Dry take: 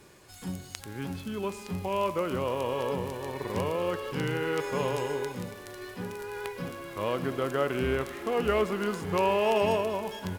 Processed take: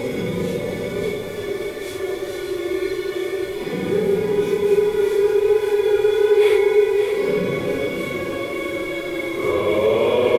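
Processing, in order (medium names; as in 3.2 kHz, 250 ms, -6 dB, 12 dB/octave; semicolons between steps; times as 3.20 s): added noise pink -52 dBFS; Paulstretch 5.8×, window 0.05 s, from 5.34 s; in parallel at +1 dB: peak limiter -27.5 dBFS, peak gain reduction 9.5 dB; on the sum: small resonant body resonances 410/2200/3400 Hz, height 16 dB, ringing for 25 ms; resampled via 32 kHz; delay 578 ms -7 dB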